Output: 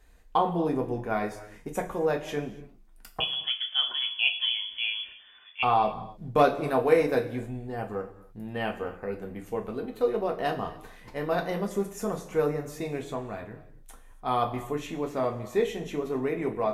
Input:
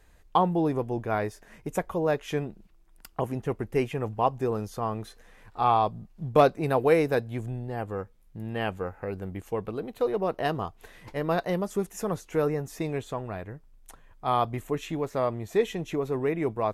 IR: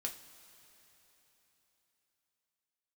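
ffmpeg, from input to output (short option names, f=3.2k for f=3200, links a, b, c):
-filter_complex "[0:a]asettb=1/sr,asplit=3[a][b][c];[a]atrim=end=3.204[d];[b]atrim=start=3.2:end=5.63,asetpts=PTS-STARTPTS,afade=t=in:d=0.004:c=qsin,afade=t=out:st=2.426:d=0.004:c=qsin,lowpass=f=3k:t=q:w=0.5098,lowpass=f=3k:t=q:w=0.6013,lowpass=f=3k:t=q:w=0.9,lowpass=f=3k:t=q:w=2.563,afreqshift=-3500[e];[c]atrim=start=5.626[f];[d][e]acrossfade=d=0.004:c1=hsin:c2=qsin[g];[g][f]acrossfade=d=0.004:c1=qsin:c2=hsin[h];[1:a]atrim=start_sample=2205,afade=t=out:st=0.35:d=0.01,atrim=end_sample=15876[i];[h][i]afir=irnorm=-1:irlink=0"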